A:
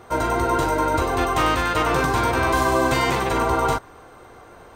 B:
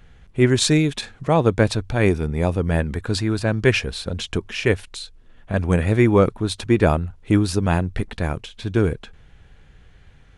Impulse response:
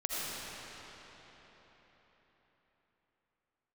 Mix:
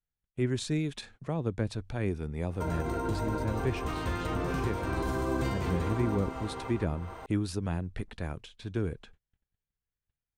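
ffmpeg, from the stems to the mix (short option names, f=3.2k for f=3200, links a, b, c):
-filter_complex "[0:a]alimiter=limit=-14.5dB:level=0:latency=1,flanger=delay=9.6:depth=3:regen=75:speed=0.37:shape=triangular,adelay=2500,volume=2dB,asplit=2[a][b];[b]volume=-14.5dB[c];[1:a]agate=range=-32dB:threshold=-41dB:ratio=16:detection=peak,volume=-12dB,asplit=2[d][e];[e]apad=whole_len=320144[f];[a][f]sidechaincompress=threshold=-31dB:ratio=8:attack=7.6:release=561[g];[2:a]atrim=start_sample=2205[h];[c][h]afir=irnorm=-1:irlink=0[i];[g][d][i]amix=inputs=3:normalize=0,acrossover=split=370[j][k];[k]acompressor=threshold=-36dB:ratio=6[l];[j][l]amix=inputs=2:normalize=0"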